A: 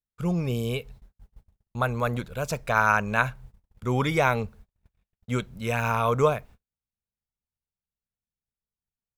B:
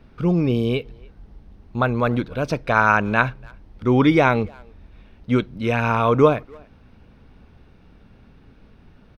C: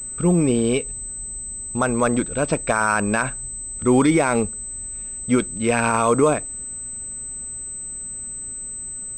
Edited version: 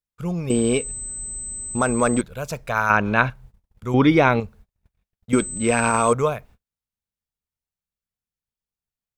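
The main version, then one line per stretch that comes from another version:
A
0.50–2.21 s: from C
2.90–3.30 s: from B
3.94–4.40 s: from B
5.33–6.13 s: from C

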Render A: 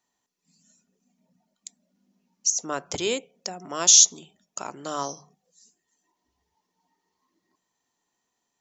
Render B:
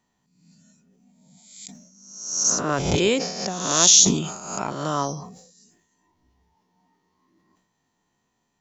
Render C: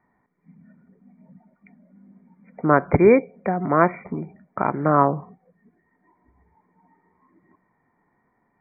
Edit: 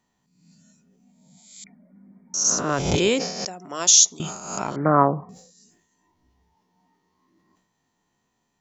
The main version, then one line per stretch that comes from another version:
B
1.64–2.34 s: from C
3.45–4.20 s: from A
4.76–5.29 s: from C

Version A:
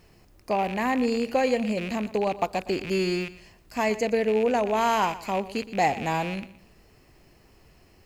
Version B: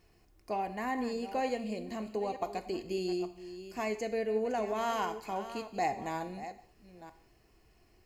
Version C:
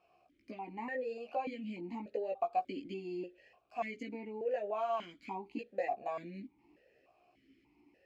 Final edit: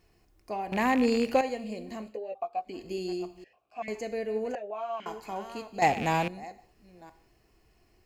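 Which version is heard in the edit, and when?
B
0.72–1.41 s: from A
2.10–2.74 s: from C, crossfade 0.24 s
3.44–3.88 s: from C
4.55–5.06 s: from C
5.82–6.28 s: from A

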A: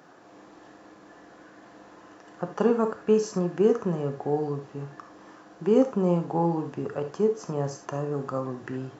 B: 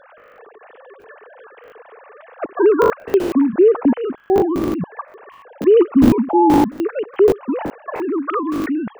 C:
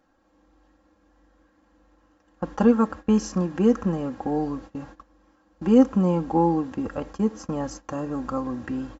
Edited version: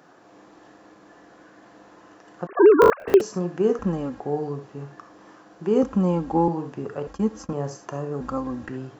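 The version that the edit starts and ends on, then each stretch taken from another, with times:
A
2.47–3.21 s: from B
3.79–4.20 s: from C
5.83–6.48 s: from C
7.07–7.53 s: from C
8.21–8.69 s: from C

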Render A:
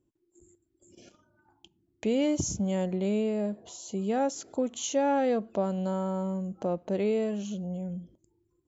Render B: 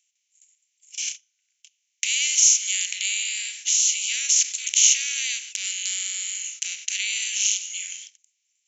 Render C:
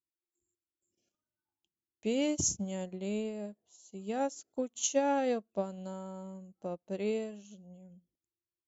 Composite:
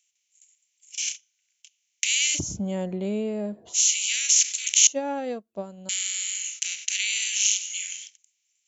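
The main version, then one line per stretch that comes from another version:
B
2.37–3.76 s: from A, crossfade 0.06 s
4.87–5.89 s: from C

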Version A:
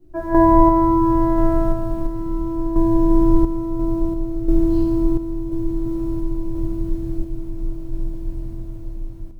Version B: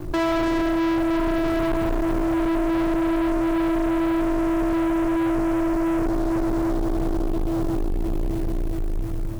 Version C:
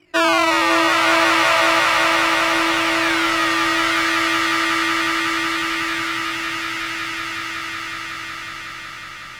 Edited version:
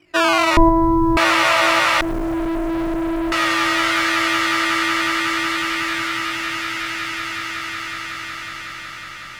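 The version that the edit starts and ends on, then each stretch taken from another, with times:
C
0.57–1.17 s: from A
2.01–3.32 s: from B

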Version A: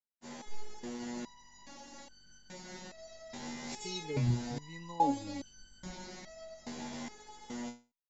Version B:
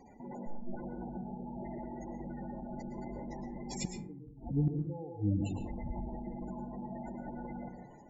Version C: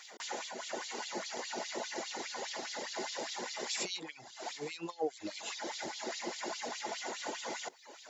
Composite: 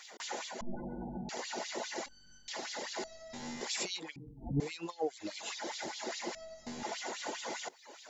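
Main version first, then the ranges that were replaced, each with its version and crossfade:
C
0.61–1.29 s: from B
2.06–2.48 s: from A
3.04–3.61 s: from A
4.16–4.60 s: from B
6.35–6.83 s: from A

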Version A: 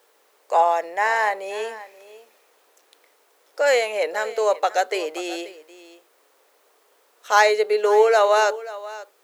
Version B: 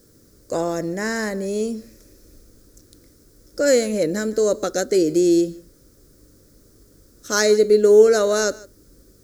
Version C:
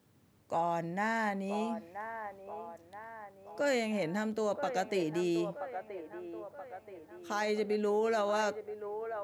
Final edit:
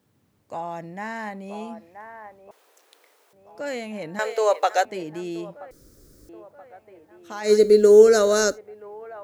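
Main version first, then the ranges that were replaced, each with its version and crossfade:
C
2.51–3.33 s: from A
4.19–4.85 s: from A
5.71–6.29 s: from B
7.48–8.54 s: from B, crossfade 0.10 s

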